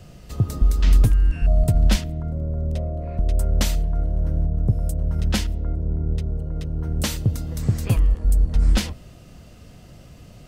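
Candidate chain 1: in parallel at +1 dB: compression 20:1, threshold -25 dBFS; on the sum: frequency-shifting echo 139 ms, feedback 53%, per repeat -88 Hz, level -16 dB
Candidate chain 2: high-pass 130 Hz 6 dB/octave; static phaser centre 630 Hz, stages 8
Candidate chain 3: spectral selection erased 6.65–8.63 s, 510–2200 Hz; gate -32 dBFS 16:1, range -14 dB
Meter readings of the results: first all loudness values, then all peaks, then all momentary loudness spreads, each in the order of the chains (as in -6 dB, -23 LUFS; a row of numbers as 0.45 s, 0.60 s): -20.0 LUFS, -32.5 LUFS, -23.0 LUFS; -3.5 dBFS, -12.5 dBFS, -5.5 dBFS; 19 LU, 8 LU, 9 LU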